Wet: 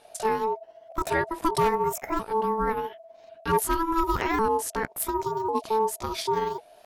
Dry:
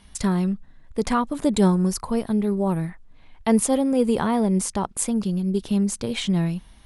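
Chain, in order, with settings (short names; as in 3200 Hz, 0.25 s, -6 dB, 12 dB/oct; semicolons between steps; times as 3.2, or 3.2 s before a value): repeated pitch sweeps +7 st, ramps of 1.097 s; wavefolder -12.5 dBFS; ring modulator 660 Hz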